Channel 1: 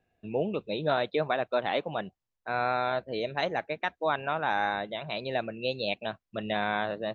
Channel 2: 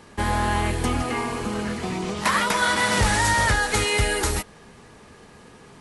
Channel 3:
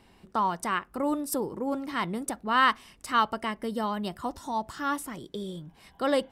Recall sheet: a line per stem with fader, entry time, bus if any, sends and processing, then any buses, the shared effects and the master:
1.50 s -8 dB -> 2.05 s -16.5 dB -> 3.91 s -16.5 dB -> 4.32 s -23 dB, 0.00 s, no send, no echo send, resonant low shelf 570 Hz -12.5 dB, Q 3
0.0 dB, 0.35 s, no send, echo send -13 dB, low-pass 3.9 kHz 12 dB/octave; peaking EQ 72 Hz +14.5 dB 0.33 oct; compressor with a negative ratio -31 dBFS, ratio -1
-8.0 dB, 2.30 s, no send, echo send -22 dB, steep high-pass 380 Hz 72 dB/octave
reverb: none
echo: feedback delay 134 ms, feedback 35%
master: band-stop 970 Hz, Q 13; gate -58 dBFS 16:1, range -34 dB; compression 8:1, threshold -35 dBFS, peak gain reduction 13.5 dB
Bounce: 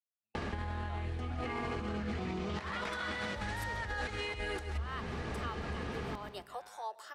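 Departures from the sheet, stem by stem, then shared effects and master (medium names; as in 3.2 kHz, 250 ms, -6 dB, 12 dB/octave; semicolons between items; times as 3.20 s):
stem 1 -8.0 dB -> -14.5 dB; stem 2 0.0 dB -> +7.5 dB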